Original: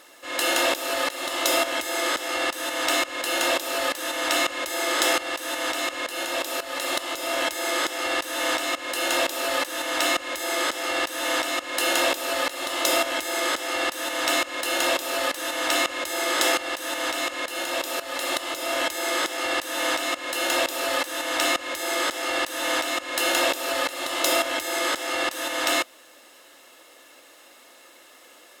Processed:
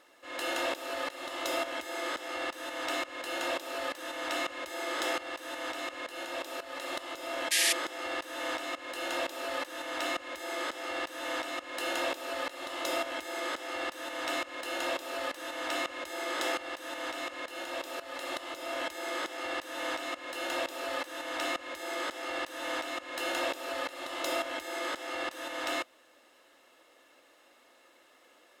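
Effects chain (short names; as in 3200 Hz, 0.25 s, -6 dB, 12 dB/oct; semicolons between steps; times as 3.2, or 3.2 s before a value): painted sound noise, 7.51–7.73, 1600–12000 Hz -12 dBFS; high shelf 4600 Hz -10 dB; gain -8.5 dB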